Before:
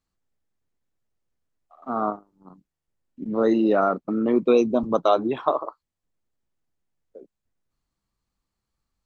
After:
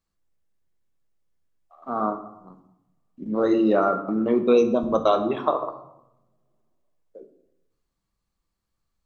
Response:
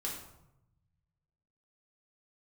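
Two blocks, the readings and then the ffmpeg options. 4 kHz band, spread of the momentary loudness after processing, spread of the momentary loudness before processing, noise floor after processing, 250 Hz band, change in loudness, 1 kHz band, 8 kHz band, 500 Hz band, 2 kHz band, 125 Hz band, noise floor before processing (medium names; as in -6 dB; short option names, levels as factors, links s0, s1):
0.0 dB, 12 LU, 11 LU, -80 dBFS, 0.0 dB, 0.0 dB, 0.0 dB, no reading, +0.5 dB, -0.5 dB, +0.5 dB, -85 dBFS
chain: -filter_complex "[0:a]asplit=2[s0][s1];[1:a]atrim=start_sample=2205[s2];[s1][s2]afir=irnorm=-1:irlink=0,volume=0.631[s3];[s0][s3]amix=inputs=2:normalize=0,volume=0.668"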